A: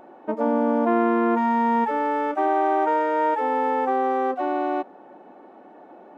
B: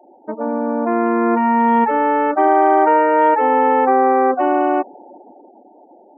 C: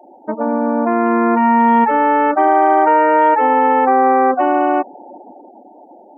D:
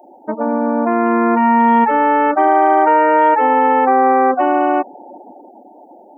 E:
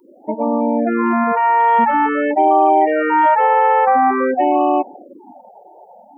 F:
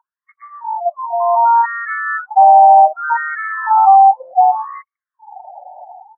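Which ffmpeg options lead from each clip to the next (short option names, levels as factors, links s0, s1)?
-af "afftfilt=real='re*gte(hypot(re,im),0.0126)':imag='im*gte(hypot(re,im),0.0126)':win_size=1024:overlap=0.75,dynaudnorm=f=230:g=11:m=3.55"
-filter_complex "[0:a]equalizer=f=410:w=2.2:g=-4.5,asplit=2[s0][s1];[s1]alimiter=limit=0.2:level=0:latency=1:release=348,volume=1.19[s2];[s0][s2]amix=inputs=2:normalize=0,volume=0.891"
-af "crystalizer=i=1:c=0"
-af "afftfilt=real='re*(1-between(b*sr/1024,240*pow(1700/240,0.5+0.5*sin(2*PI*0.48*pts/sr))/1.41,240*pow(1700/240,0.5+0.5*sin(2*PI*0.48*pts/sr))*1.41))':imag='im*(1-between(b*sr/1024,240*pow(1700/240,0.5+0.5*sin(2*PI*0.48*pts/sr))/1.41,240*pow(1700/240,0.5+0.5*sin(2*PI*0.48*pts/sr))*1.41))':win_size=1024:overlap=0.75"
-af "highpass=f=470:w=0.5412,highpass=f=470:w=1.3066,equalizer=f=500:t=q:w=4:g=-5,equalizer=f=760:t=q:w=4:g=8,equalizer=f=1200:t=q:w=4:g=-4,equalizer=f=1600:t=q:w=4:g=7,lowpass=f=2100:w=0.5412,lowpass=f=2100:w=1.3066,acontrast=44,afftfilt=real='re*between(b*sr/1024,720*pow(1600/720,0.5+0.5*sin(2*PI*0.66*pts/sr))/1.41,720*pow(1600/720,0.5+0.5*sin(2*PI*0.66*pts/sr))*1.41)':imag='im*between(b*sr/1024,720*pow(1600/720,0.5+0.5*sin(2*PI*0.66*pts/sr))/1.41,720*pow(1600/720,0.5+0.5*sin(2*PI*0.66*pts/sr))*1.41)':win_size=1024:overlap=0.75,volume=0.794"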